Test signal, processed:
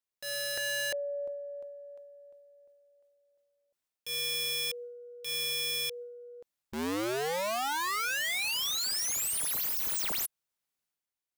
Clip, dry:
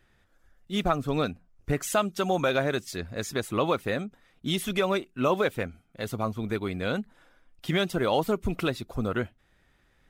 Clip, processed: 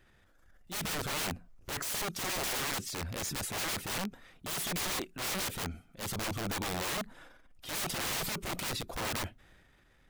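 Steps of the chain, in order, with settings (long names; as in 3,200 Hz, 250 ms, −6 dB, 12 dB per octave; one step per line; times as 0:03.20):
wrap-around overflow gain 29 dB
transient designer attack −6 dB, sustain +6 dB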